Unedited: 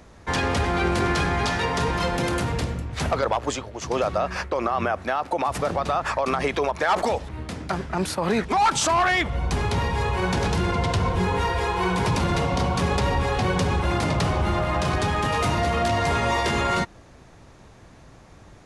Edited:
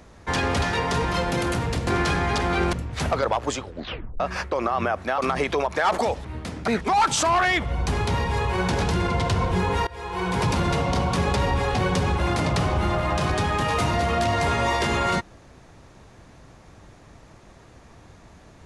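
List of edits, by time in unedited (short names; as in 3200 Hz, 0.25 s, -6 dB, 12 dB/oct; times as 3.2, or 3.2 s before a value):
0.62–0.97 swap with 1.48–2.73
3.61 tape stop 0.59 s
5.18–6.22 cut
7.72–8.32 cut
11.51–12.06 fade in, from -22 dB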